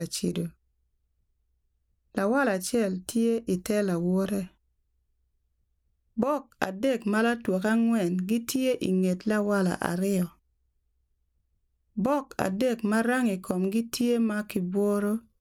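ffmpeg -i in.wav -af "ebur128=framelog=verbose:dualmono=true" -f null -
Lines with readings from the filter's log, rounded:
Integrated loudness:
  I:         -24.2 LUFS
  Threshold: -34.5 LUFS
Loudness range:
  LRA:         4.7 LU
  Threshold: -45.6 LUFS
  LRA low:   -28.0 LUFS
  LRA high:  -23.3 LUFS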